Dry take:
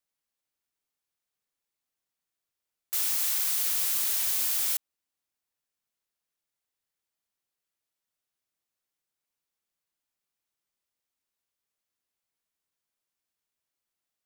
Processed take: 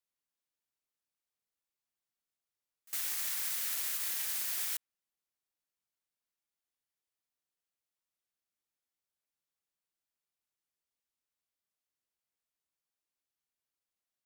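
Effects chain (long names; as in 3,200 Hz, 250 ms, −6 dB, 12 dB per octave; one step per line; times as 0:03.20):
dynamic equaliser 1,800 Hz, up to +6 dB, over −56 dBFS, Q 1.6
echo ahead of the sound 57 ms −23.5 dB
brickwall limiter −18.5 dBFS, peak gain reduction 4 dB
tape wow and flutter 18 cents
level −6 dB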